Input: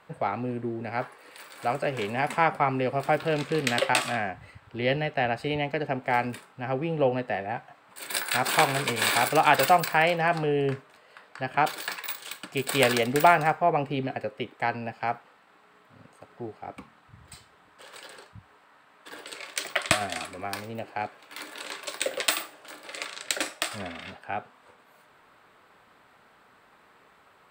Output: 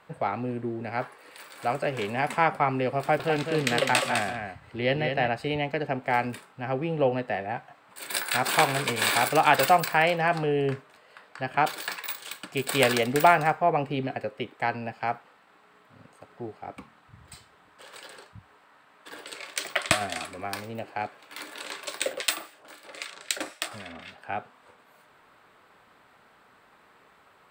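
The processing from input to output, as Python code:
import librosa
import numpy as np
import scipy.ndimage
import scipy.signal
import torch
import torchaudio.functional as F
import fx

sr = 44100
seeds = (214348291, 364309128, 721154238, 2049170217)

y = fx.echo_single(x, sr, ms=204, db=-6.0, at=(2.99, 5.28))
y = fx.harmonic_tremolo(y, sr, hz=3.8, depth_pct=70, crossover_hz=1400.0, at=(22.13, 24.18))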